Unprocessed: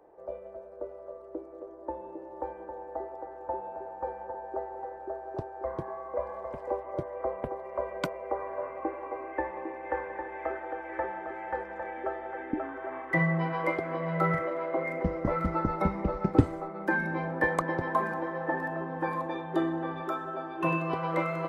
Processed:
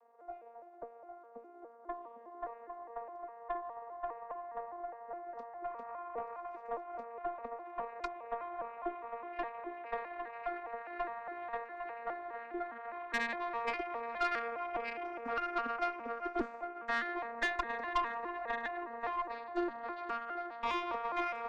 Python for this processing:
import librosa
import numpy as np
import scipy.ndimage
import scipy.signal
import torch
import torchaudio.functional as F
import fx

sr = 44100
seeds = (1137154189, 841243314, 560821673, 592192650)

y = fx.vocoder_arp(x, sr, chord='bare fifth', root=58, every_ms=205)
y = scipy.signal.sosfilt(scipy.signal.butter(2, 850.0, 'highpass', fs=sr, output='sos'), y)
y = fx.tube_stage(y, sr, drive_db=31.0, bias=0.6)
y = y * 10.0 ** (5.0 / 20.0)